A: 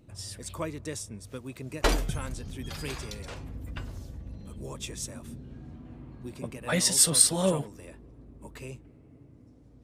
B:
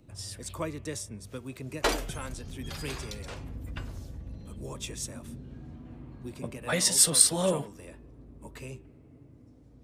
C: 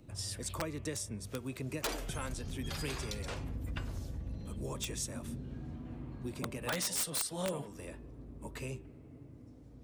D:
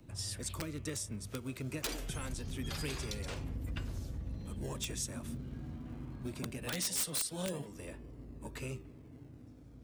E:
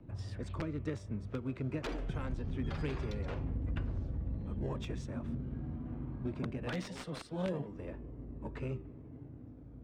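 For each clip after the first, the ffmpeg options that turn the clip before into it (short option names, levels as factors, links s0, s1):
-filter_complex "[0:a]bandreject=f=194.9:t=h:w=4,bandreject=f=389.8:t=h:w=4,bandreject=f=584.7:t=h:w=4,bandreject=f=779.6:t=h:w=4,bandreject=f=974.5:t=h:w=4,bandreject=f=1169.4:t=h:w=4,bandreject=f=1364.3:t=h:w=4,bandreject=f=1559.2:t=h:w=4,bandreject=f=1754.1:t=h:w=4,bandreject=f=1949:t=h:w=4,bandreject=f=2143.9:t=h:w=4,bandreject=f=2338.8:t=h:w=4,bandreject=f=2533.7:t=h:w=4,bandreject=f=2728.6:t=h:w=4,bandreject=f=2923.5:t=h:w=4,bandreject=f=3118.4:t=h:w=4,bandreject=f=3313.3:t=h:w=4,acrossover=split=270|700|2400[s0][s1][s2][s3];[s0]alimiter=level_in=1.88:limit=0.0631:level=0:latency=1:release=410,volume=0.531[s4];[s4][s1][s2][s3]amix=inputs=4:normalize=0"
-af "acompressor=threshold=0.0178:ratio=4,aeval=exprs='(mod(22.4*val(0)+1,2)-1)/22.4':c=same,volume=1.12"
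-filter_complex "[0:a]acrossover=split=420|480|1900[s0][s1][s2][s3];[s1]acrusher=samples=34:mix=1:aa=0.000001:lfo=1:lforange=34:lforate=0.22[s4];[s2]alimiter=level_in=6.31:limit=0.0631:level=0:latency=1:release=434,volume=0.158[s5];[s0][s4][s5][s3]amix=inputs=4:normalize=0"
-af "adynamicsmooth=sensitivity=2:basefreq=1600,volume=1.5"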